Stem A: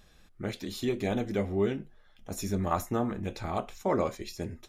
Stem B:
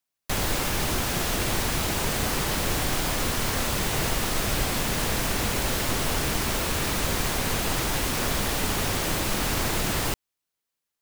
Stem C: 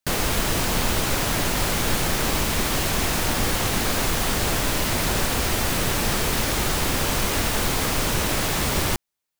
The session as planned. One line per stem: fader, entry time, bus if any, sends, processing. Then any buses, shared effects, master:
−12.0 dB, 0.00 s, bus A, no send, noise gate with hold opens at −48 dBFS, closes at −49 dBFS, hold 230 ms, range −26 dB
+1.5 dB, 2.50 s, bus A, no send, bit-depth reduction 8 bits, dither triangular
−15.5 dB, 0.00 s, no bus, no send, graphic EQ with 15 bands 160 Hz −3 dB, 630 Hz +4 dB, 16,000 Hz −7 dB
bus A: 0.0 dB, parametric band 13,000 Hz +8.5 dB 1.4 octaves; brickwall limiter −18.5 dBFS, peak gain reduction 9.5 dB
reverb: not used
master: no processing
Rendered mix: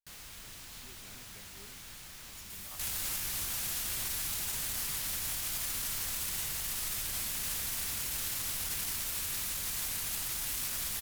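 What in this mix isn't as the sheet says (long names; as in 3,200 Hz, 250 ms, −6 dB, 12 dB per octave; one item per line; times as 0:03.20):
stem C: missing graphic EQ with 15 bands 160 Hz −3 dB, 630 Hz +4 dB, 16,000 Hz −7 dB
master: extra guitar amp tone stack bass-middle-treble 5-5-5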